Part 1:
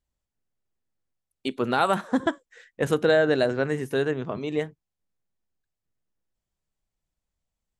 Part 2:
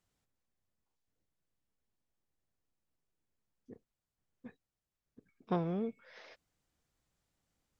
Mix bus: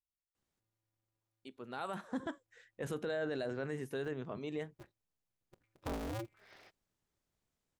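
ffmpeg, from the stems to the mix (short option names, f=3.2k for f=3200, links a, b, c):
-filter_complex "[0:a]volume=-11dB,afade=t=in:st=1.68:d=0.49:silence=0.266073[a];[1:a]aeval=exprs='val(0)*sgn(sin(2*PI*110*n/s))':c=same,adelay=350,volume=-5dB[b];[a][b]amix=inputs=2:normalize=0,alimiter=level_in=5.5dB:limit=-24dB:level=0:latency=1:release=14,volume=-5.5dB"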